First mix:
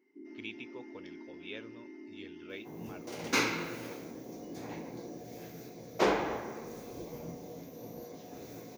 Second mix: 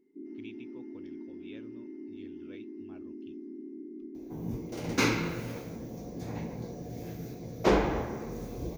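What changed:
speech -10.0 dB; second sound: entry +1.65 s; master: remove HPF 470 Hz 6 dB/oct

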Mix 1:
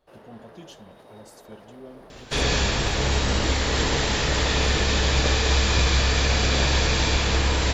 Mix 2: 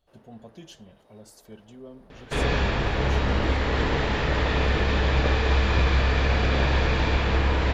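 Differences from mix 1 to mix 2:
first sound -11.0 dB; second sound: add LPF 2400 Hz 12 dB/oct

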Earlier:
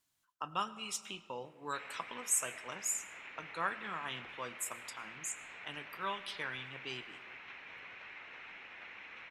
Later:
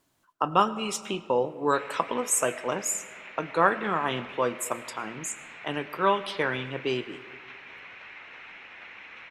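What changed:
speech: remove passive tone stack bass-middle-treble 5-5-5; background +5.0 dB

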